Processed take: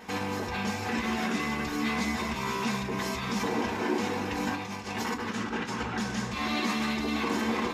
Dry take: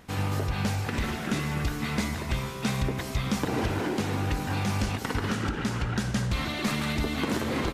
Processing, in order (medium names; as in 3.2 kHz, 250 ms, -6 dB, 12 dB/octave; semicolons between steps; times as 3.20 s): 4.55–5.80 s: compressor with a negative ratio -34 dBFS, ratio -0.5; peak limiter -28.5 dBFS, peak gain reduction 11.5 dB; peaking EQ 940 Hz +8.5 dB 0.38 oct; reverberation, pre-delay 3 ms, DRR -1 dB